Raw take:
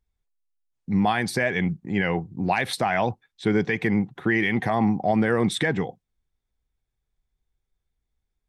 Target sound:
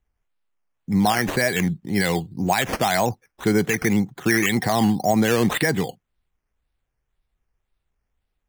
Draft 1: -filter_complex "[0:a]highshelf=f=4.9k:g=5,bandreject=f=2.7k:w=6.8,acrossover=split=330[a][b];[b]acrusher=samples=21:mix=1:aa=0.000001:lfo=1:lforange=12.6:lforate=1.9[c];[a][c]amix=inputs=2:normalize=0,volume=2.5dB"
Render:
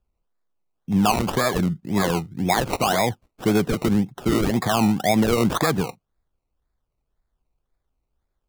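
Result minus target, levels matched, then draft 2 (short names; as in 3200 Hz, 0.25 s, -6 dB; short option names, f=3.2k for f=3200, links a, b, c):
decimation with a swept rate: distortion +8 dB
-filter_complex "[0:a]highshelf=f=4.9k:g=5,bandreject=f=2.7k:w=6.8,acrossover=split=330[a][b];[b]acrusher=samples=9:mix=1:aa=0.000001:lfo=1:lforange=5.4:lforate=1.9[c];[a][c]amix=inputs=2:normalize=0,volume=2.5dB"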